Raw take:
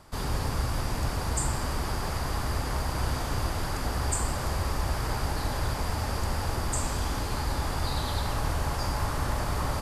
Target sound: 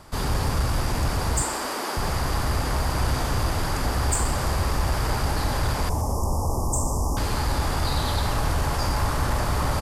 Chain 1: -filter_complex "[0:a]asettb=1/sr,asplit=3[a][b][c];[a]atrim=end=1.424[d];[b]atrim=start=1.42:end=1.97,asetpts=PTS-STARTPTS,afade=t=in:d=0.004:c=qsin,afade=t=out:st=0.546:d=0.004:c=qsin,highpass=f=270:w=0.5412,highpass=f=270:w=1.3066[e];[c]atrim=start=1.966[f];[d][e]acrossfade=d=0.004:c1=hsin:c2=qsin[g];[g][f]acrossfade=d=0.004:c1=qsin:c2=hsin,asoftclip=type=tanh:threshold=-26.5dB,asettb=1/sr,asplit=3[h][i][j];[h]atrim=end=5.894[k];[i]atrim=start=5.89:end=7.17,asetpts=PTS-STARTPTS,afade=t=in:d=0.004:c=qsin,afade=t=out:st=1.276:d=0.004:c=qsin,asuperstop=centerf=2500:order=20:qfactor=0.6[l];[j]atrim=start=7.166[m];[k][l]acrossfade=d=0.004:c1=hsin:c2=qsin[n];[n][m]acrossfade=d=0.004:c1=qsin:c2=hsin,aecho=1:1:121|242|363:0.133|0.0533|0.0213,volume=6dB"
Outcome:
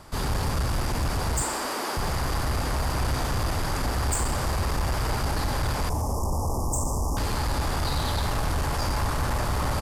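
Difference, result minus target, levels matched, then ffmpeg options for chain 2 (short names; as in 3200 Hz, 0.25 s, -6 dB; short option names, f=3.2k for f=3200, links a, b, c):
soft clip: distortion +9 dB
-filter_complex "[0:a]asettb=1/sr,asplit=3[a][b][c];[a]atrim=end=1.424[d];[b]atrim=start=1.42:end=1.97,asetpts=PTS-STARTPTS,afade=t=in:d=0.004:c=qsin,afade=t=out:st=0.546:d=0.004:c=qsin,highpass=f=270:w=0.5412,highpass=f=270:w=1.3066[e];[c]atrim=start=1.966[f];[d][e]acrossfade=d=0.004:c1=hsin:c2=qsin[g];[g][f]acrossfade=d=0.004:c1=qsin:c2=hsin,asoftclip=type=tanh:threshold=-19.5dB,asettb=1/sr,asplit=3[h][i][j];[h]atrim=end=5.894[k];[i]atrim=start=5.89:end=7.17,asetpts=PTS-STARTPTS,afade=t=in:d=0.004:c=qsin,afade=t=out:st=1.276:d=0.004:c=qsin,asuperstop=centerf=2500:order=20:qfactor=0.6[l];[j]atrim=start=7.166[m];[k][l]acrossfade=d=0.004:c1=hsin:c2=qsin[n];[n][m]acrossfade=d=0.004:c1=qsin:c2=hsin,aecho=1:1:121|242|363:0.133|0.0533|0.0213,volume=6dB"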